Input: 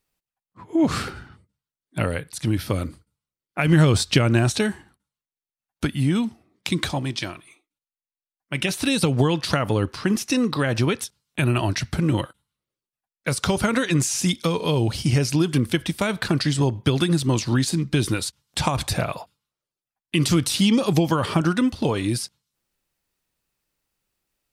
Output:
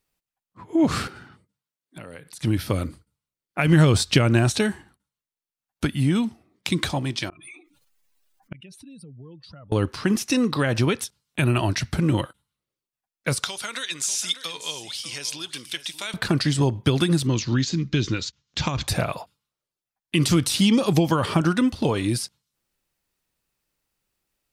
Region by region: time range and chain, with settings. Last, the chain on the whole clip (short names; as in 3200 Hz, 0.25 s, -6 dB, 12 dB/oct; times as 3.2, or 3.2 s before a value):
1.07–2.41 HPF 140 Hz + compressor 4:1, threshold -38 dBFS
7.29–9.72 spectral contrast raised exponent 2 + flipped gate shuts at -24 dBFS, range -32 dB + fast leveller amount 50%
13.44–16.14 band-pass 6200 Hz, Q 0.51 + bell 3600 Hz +6.5 dB 0.2 oct + echo 0.593 s -13.5 dB
17.27–18.88 elliptic low-pass 6800 Hz + bell 770 Hz -7.5 dB 1.1 oct
whole clip: dry